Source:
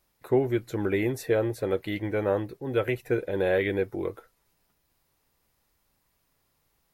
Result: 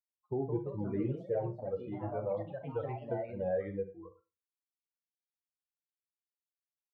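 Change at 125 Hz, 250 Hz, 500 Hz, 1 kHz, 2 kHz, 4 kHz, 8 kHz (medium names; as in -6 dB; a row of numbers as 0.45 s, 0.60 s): -6.5 dB, -9.5 dB, -9.5 dB, -6.5 dB, -21.0 dB, under -25 dB, no reading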